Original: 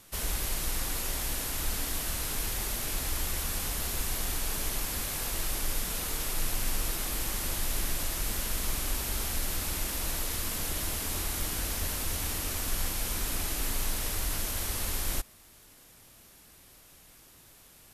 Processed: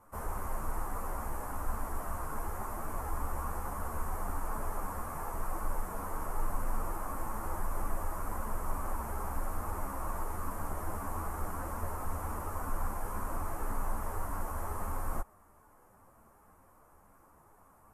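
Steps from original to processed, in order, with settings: FFT filter 380 Hz 0 dB, 1.1 kHz +10 dB, 3.7 kHz -30 dB, 8.3 kHz -12 dB; three-phase chorus

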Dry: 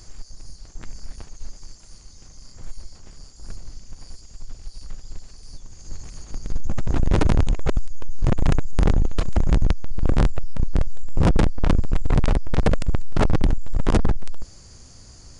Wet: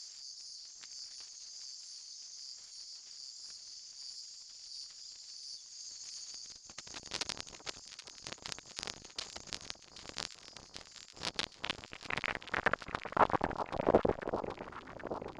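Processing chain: single-diode clipper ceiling -14 dBFS; band-pass sweep 5 kHz -> 340 Hz, 11.16–14.68 s; echo whose repeats swap between lows and highs 389 ms, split 1.2 kHz, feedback 81%, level -10.5 dB; trim +5.5 dB

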